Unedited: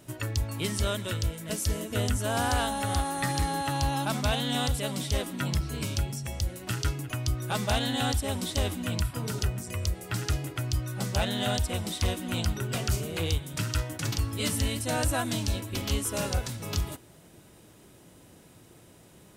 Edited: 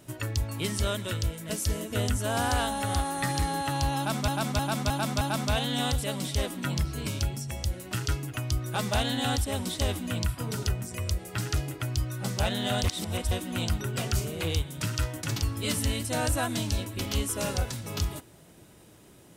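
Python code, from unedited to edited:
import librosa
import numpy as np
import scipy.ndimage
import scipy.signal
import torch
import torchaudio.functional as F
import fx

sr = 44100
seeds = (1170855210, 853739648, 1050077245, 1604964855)

y = fx.edit(x, sr, fx.repeat(start_s=3.97, length_s=0.31, count=5),
    fx.reverse_span(start_s=11.6, length_s=0.47), tone=tone)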